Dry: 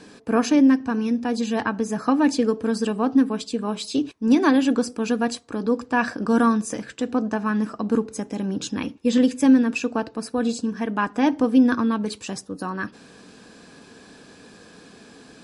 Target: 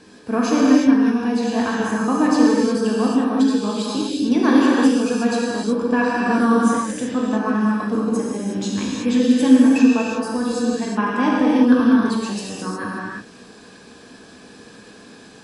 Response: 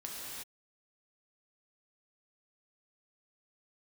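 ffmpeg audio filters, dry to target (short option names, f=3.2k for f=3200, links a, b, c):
-filter_complex "[1:a]atrim=start_sample=2205[a];[0:a][a]afir=irnorm=-1:irlink=0,volume=3dB"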